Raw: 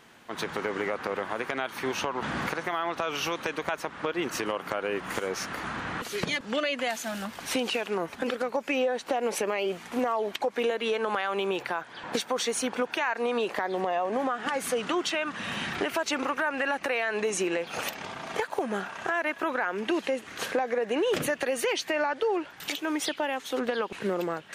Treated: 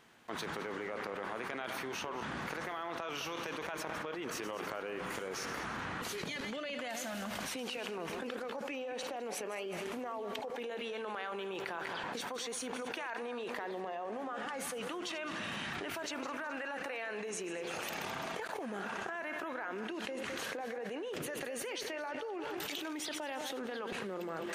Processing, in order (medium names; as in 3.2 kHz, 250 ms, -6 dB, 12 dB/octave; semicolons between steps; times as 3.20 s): backward echo that repeats 105 ms, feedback 63%, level -12 dB; level held to a coarse grid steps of 23 dB; trim +6 dB